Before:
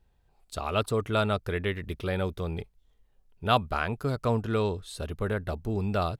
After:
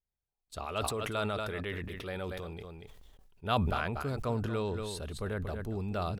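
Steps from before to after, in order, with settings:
noise gate with hold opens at −53 dBFS
0:00.65–0:03.44: low-shelf EQ 300 Hz −6 dB
single-tap delay 236 ms −12.5 dB
level that may fall only so fast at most 23 dB per second
level −7 dB

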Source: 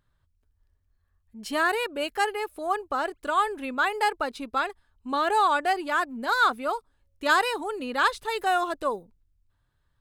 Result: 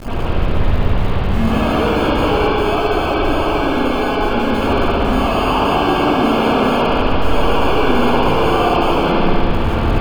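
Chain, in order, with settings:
sign of each sample alone
0:02.29–0:04.41: low-pass filter 1,300 Hz 6 dB per octave
decimation without filtering 23×
convolution reverb RT60 4.2 s, pre-delay 57 ms, DRR −17 dB
level −3.5 dB

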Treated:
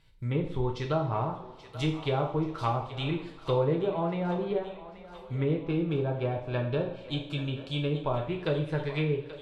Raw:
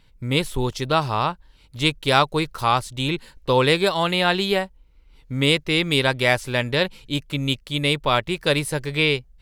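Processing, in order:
treble cut that deepens with the level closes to 600 Hz, closed at −16 dBFS
0:05.60–0:08.14: Butterworth band-reject 2,000 Hz, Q 4.4
feedback echo with a high-pass in the loop 831 ms, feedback 61%, high-pass 620 Hz, level −13 dB
coupled-rooms reverb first 0.52 s, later 2.9 s, from −20 dB, DRR 1 dB
level −8 dB

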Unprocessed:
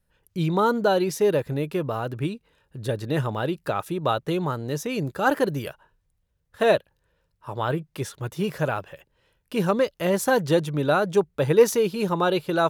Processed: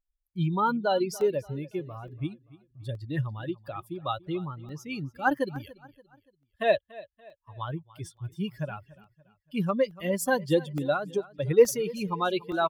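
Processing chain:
spectral dynamics exaggerated over time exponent 2
0:04.23–0:04.83: high-shelf EQ 4,200 Hz −10 dB
0:10.93–0:11.51: downward compressor, threshold −25 dBFS, peak gain reduction 8.5 dB
on a send: repeating echo 287 ms, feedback 41%, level −20 dB
on the sum: regular buffer underruns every 0.87 s, samples 64, zero, from 0:00.34
0:08.40–0:08.90: one half of a high-frequency compander encoder only

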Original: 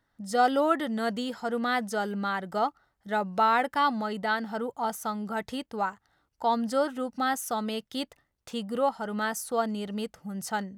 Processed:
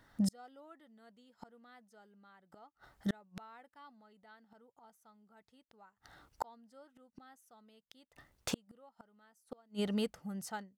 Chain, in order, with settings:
fade-out on the ending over 2.61 s
gate with flip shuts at −31 dBFS, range −41 dB
level +9.5 dB

